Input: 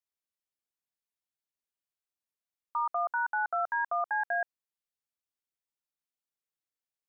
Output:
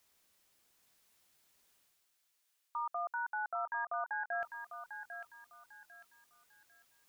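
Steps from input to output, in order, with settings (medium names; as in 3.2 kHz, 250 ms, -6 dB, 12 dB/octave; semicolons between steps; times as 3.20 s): reverse; upward compressor, threshold -43 dBFS; reverse; thinning echo 798 ms, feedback 40%, high-pass 1.2 kHz, level -5.5 dB; trim -7.5 dB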